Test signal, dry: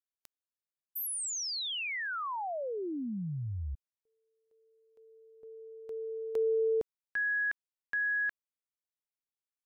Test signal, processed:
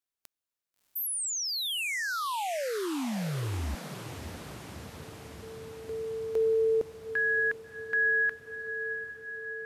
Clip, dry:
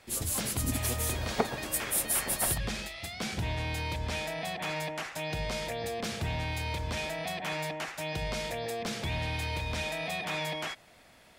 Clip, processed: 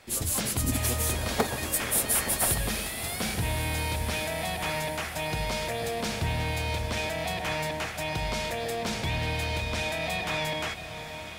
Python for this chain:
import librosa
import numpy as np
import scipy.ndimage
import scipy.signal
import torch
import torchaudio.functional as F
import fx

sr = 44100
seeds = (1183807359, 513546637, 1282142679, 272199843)

p1 = (np.mod(10.0 ** (16.5 / 20.0) * x + 1.0, 2.0) - 1.0) / 10.0 ** (16.5 / 20.0)
p2 = x + (p1 * librosa.db_to_amplitude(-6.5))
y = fx.echo_diffused(p2, sr, ms=663, feedback_pct=71, wet_db=-11.0)